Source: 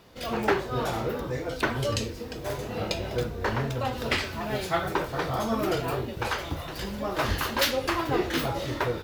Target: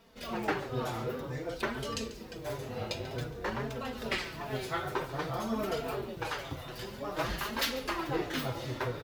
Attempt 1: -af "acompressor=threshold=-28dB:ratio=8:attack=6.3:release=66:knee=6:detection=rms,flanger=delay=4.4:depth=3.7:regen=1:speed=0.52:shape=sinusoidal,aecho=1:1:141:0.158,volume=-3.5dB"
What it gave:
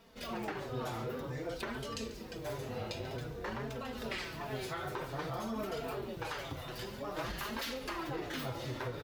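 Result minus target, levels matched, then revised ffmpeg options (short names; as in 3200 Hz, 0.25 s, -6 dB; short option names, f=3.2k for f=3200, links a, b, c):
compressor: peak gain reduction +11 dB
-af "flanger=delay=4.4:depth=3.7:regen=1:speed=0.52:shape=sinusoidal,aecho=1:1:141:0.158,volume=-3.5dB"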